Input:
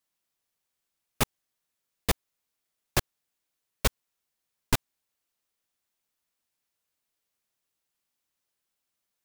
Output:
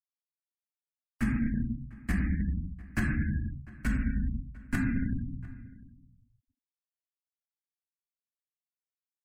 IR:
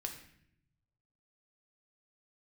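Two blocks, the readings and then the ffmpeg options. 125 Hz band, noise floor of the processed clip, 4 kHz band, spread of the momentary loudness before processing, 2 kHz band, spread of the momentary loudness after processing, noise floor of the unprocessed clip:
+6.5 dB, below −85 dBFS, below −15 dB, 0 LU, +0.5 dB, 10 LU, −84 dBFS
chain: -filter_complex "[0:a]acrossover=split=190[link_01][link_02];[link_01]alimiter=level_in=1.5dB:limit=-24dB:level=0:latency=1,volume=-1.5dB[link_03];[link_03][link_02]amix=inputs=2:normalize=0,equalizer=frequency=60:width_type=o:width=1.3:gain=9,bandreject=frequency=3600:width=8.1[link_04];[1:a]atrim=start_sample=2205[link_05];[link_04][link_05]afir=irnorm=-1:irlink=0,dynaudnorm=framelen=190:gausssize=3:maxgain=12dB,firequalizer=gain_entry='entry(130,0);entry(230,14);entry(440,-22);entry(650,-12);entry(960,-13);entry(1600,5);entry(3100,-15);entry(5300,-16);entry(8000,-11);entry(16000,-20)':delay=0.05:min_phase=1,afftfilt=real='re*gte(hypot(re,im),0.00794)':imag='im*gte(hypot(re,im),0.00794)':win_size=1024:overlap=0.75,areverse,acompressor=threshold=-32dB:ratio=10,areverse,asplit=2[link_06][link_07];[link_07]adelay=699.7,volume=-20dB,highshelf=frequency=4000:gain=-15.7[link_08];[link_06][link_08]amix=inputs=2:normalize=0,volume=6dB"

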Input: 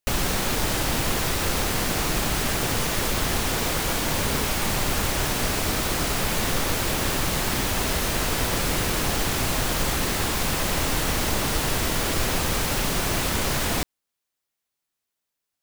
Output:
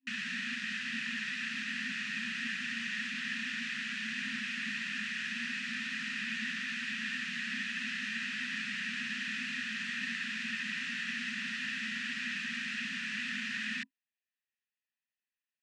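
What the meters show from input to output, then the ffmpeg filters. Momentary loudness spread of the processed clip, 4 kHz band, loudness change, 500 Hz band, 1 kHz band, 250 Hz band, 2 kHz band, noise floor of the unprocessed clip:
1 LU, −11.5 dB, −11.5 dB, below −40 dB, −24.0 dB, −13.5 dB, −4.0 dB, −83 dBFS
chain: -filter_complex "[0:a]asplit=3[link_01][link_02][link_03];[link_01]bandpass=frequency=530:width_type=q:width=8,volume=0dB[link_04];[link_02]bandpass=frequency=1840:width_type=q:width=8,volume=-6dB[link_05];[link_03]bandpass=frequency=2480:width_type=q:width=8,volume=-9dB[link_06];[link_04][link_05][link_06]amix=inputs=3:normalize=0,highpass=frequency=190:width=0.5412,highpass=frequency=190:width=1.3066,equalizer=frequency=220:width_type=q:width=4:gain=10,equalizer=frequency=570:width_type=q:width=4:gain=-6,equalizer=frequency=820:width_type=q:width=4:gain=-8,lowpass=frequency=7900:width=0.5412,lowpass=frequency=7900:width=1.3066,afftfilt=real='re*(1-between(b*sr/4096,260,990))':imag='im*(1-between(b*sr/4096,260,990))':win_size=4096:overlap=0.75,volume=6.5dB"

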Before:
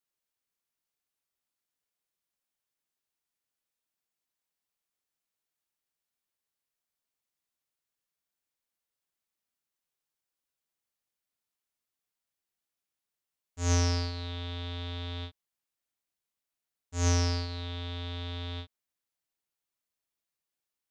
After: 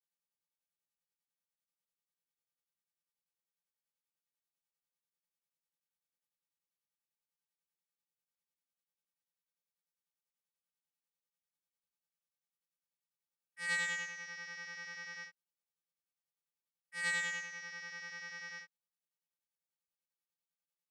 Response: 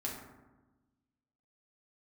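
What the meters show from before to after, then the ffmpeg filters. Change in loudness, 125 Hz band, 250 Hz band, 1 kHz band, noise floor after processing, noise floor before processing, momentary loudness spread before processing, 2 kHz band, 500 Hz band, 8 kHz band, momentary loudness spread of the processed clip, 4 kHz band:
−6.5 dB, −33.0 dB, −25.0 dB, −10.0 dB, below −85 dBFS, below −85 dBFS, 14 LU, +7.0 dB, −18.5 dB, −9.0 dB, 14 LU, −9.5 dB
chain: -af "afftfilt=real='hypot(re,im)*cos(PI*b)':imag='0':win_size=512:overlap=0.75,aeval=exprs='val(0)*sin(2*PI*1900*n/s)':channel_layout=same,volume=-3dB"

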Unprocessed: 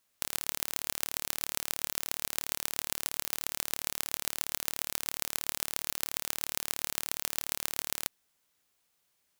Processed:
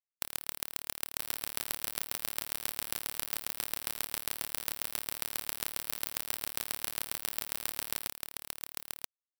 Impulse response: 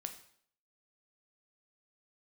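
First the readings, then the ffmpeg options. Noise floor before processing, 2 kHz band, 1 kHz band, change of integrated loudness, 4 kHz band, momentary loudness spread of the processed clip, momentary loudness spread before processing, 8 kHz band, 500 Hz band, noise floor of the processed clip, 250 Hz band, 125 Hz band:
−76 dBFS, −2.0 dB, −2.0 dB, −2.5 dB, −2.5 dB, 4 LU, 0 LU, −3.5 dB, −2.0 dB, below −85 dBFS, −2.0 dB, −2.0 dB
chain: -af "bandreject=frequency=6700:width=6.4,afftdn=noise_reduction=18:noise_floor=-43,afftfilt=real='re*gte(hypot(re,im),0.000251)':imag='im*gte(hypot(re,im),0.000251)':win_size=1024:overlap=0.75,aecho=1:1:982:0.668"

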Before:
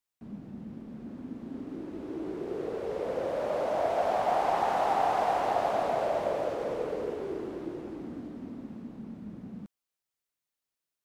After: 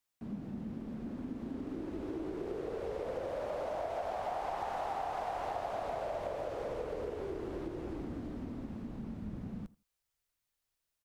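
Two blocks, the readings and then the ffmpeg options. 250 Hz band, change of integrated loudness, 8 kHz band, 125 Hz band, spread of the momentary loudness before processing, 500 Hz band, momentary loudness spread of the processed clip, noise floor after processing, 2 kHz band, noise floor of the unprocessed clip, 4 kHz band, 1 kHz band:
−2.5 dB, −8.5 dB, −8.0 dB, +0.5 dB, 16 LU, −7.5 dB, 6 LU, below −85 dBFS, −8.0 dB, below −85 dBFS, −8.0 dB, −9.5 dB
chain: -filter_complex "[0:a]asplit=2[link_01][link_02];[link_02]adelay=84,lowpass=frequency=2000:poles=1,volume=-21dB,asplit=2[link_03][link_04];[link_04]adelay=84,lowpass=frequency=2000:poles=1,volume=0.15[link_05];[link_03][link_05]amix=inputs=2:normalize=0[link_06];[link_01][link_06]amix=inputs=2:normalize=0,acompressor=threshold=-37dB:ratio=6,asubboost=boost=5:cutoff=88,volume=2.5dB"

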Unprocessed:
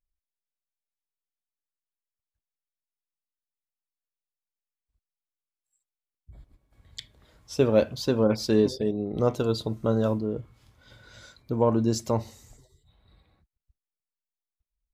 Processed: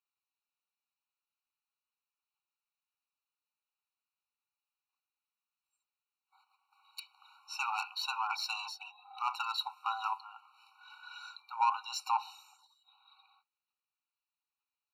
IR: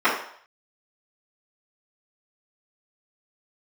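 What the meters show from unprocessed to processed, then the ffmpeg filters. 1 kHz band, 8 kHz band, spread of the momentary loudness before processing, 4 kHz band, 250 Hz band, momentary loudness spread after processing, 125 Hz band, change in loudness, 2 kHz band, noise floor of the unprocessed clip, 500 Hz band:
+3.5 dB, −7.5 dB, 14 LU, −1.0 dB, below −40 dB, 17 LU, below −40 dB, −10.0 dB, +2.0 dB, below −85 dBFS, below −40 dB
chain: -filter_complex "[0:a]highshelf=frequency=4900:width_type=q:width=1.5:gain=-10.5,acrossover=split=670[link_01][link_02];[link_02]asoftclip=type=tanh:threshold=-29dB[link_03];[link_01][link_03]amix=inputs=2:normalize=0,afftfilt=real='re*eq(mod(floor(b*sr/1024/750),2),1)':imag='im*eq(mod(floor(b*sr/1024/750),2),1)':win_size=1024:overlap=0.75,volume=6.5dB"

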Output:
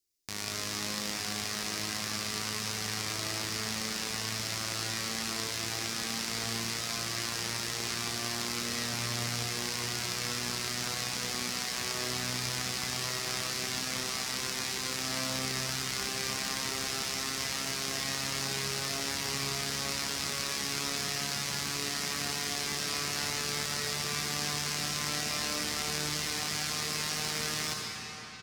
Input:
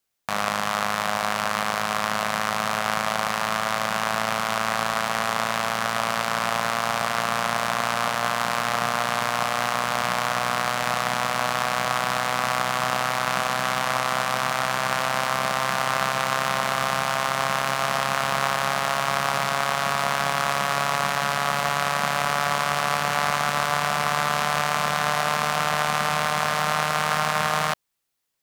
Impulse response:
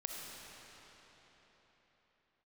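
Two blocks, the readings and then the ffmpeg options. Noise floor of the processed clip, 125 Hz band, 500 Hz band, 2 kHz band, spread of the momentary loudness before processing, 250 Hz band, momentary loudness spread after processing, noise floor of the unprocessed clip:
−36 dBFS, −6.0 dB, −13.5 dB, −11.5 dB, 2 LU, −5.5 dB, 2 LU, −27 dBFS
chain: -filter_complex "[0:a]firequalizer=gain_entry='entry(100,0);entry(160,-12);entry(340,3);entry(580,-19);entry(1300,-19);entry(2000,-9);entry(3100,-8);entry(5000,3);entry(7400,0);entry(12000,-2)':delay=0.05:min_phase=1[link_01];[1:a]atrim=start_sample=2205[link_02];[link_01][link_02]afir=irnorm=-1:irlink=0"

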